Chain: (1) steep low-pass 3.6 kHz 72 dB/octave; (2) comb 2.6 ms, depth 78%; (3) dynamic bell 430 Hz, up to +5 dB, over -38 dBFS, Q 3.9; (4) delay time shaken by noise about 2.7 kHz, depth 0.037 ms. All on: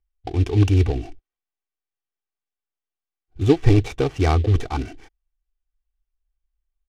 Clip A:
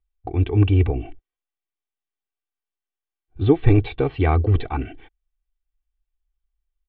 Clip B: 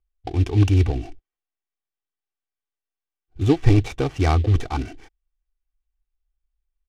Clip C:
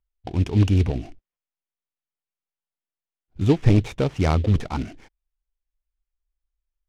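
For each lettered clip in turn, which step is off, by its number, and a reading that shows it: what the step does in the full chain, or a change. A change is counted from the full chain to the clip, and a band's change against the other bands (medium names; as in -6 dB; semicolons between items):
4, 4 kHz band -4.5 dB; 3, 500 Hz band -3.0 dB; 2, loudness change -1.5 LU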